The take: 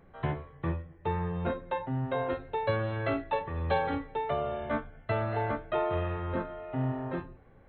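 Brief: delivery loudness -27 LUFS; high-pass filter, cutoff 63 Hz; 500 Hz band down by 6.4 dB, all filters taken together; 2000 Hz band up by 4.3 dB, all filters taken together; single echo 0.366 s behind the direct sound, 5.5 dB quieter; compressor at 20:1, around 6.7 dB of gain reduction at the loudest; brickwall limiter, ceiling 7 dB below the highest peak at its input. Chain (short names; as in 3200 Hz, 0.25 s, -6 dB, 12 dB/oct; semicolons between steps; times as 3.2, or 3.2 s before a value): HPF 63 Hz; bell 500 Hz -8.5 dB; bell 2000 Hz +6 dB; compressor 20:1, threshold -33 dBFS; limiter -29.5 dBFS; echo 0.366 s -5.5 dB; gain +12 dB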